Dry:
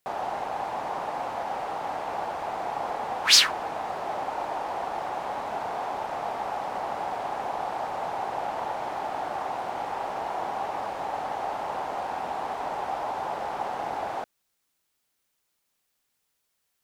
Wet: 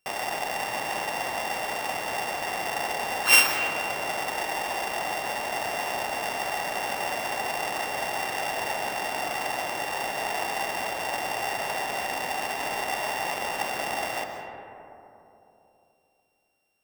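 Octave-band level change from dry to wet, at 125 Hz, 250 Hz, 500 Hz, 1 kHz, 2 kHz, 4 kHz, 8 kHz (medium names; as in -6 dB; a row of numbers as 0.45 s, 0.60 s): +1.5 dB, +1.5 dB, +0.5 dB, -1.0 dB, +8.0 dB, -2.0 dB, +1.5 dB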